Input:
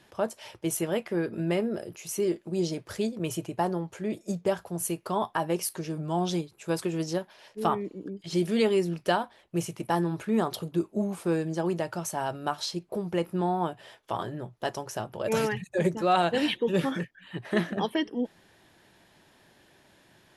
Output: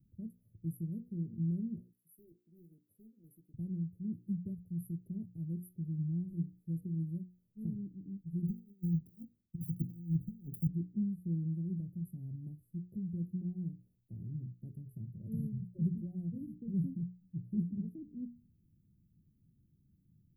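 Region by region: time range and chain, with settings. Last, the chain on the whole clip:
1.80–3.54 s: high-pass 710 Hz + loudspeaker Doppler distortion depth 0.16 ms
8.47–10.67 s: compressor with a negative ratio -31 dBFS, ratio -0.5 + short-mantissa float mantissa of 4-bit + three bands expanded up and down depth 100%
whole clip: inverse Chebyshev band-stop 960–6300 Hz, stop band 80 dB; treble shelf 4.9 kHz +9.5 dB; hum notches 60/120/180/240/300/360/420/480 Hz; trim +1 dB

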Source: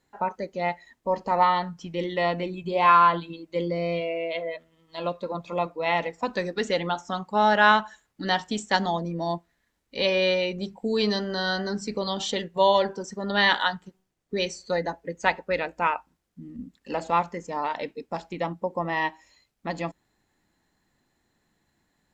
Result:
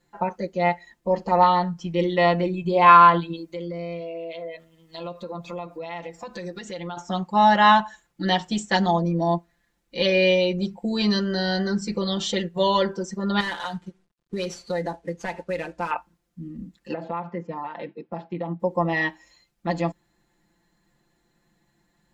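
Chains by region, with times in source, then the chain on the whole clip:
3.35–6.97 s: treble shelf 6 kHz +8 dB + compression 4:1, threshold -37 dBFS
13.40–15.91 s: CVSD coder 64 kbps + compression 2.5:1, threshold -30 dBFS + distance through air 53 m
16.93–18.60 s: high-pass 100 Hz 24 dB/octave + compression, threshold -29 dBFS + distance through air 350 m
whole clip: bass shelf 380 Hz +3.5 dB; comb 5.8 ms, depth 99%; trim -1 dB

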